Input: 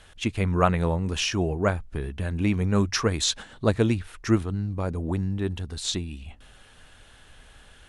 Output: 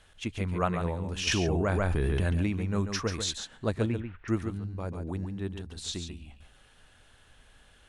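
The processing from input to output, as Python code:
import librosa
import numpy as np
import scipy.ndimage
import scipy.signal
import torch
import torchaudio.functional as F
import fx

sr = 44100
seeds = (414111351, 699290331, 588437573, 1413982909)

y = fx.lowpass(x, sr, hz=2600.0, slope=24, at=(3.86, 4.28))
y = y + 10.0 ** (-7.5 / 20.0) * np.pad(y, (int(140 * sr / 1000.0), 0))[:len(y)]
y = fx.env_flatten(y, sr, amount_pct=100, at=(1.27, 2.47))
y = y * 10.0 ** (-7.5 / 20.0)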